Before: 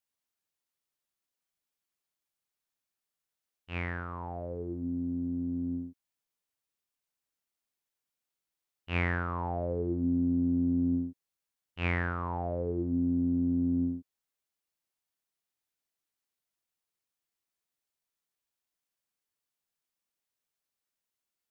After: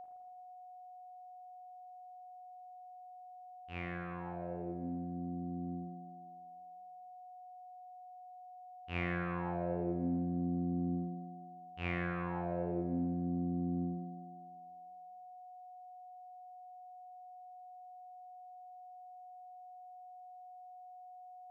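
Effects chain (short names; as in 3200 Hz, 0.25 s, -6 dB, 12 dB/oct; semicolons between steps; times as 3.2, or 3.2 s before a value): whine 730 Hz -39 dBFS; spring tank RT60 1.5 s, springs 40/54 ms, chirp 45 ms, DRR 2 dB; gain -7.5 dB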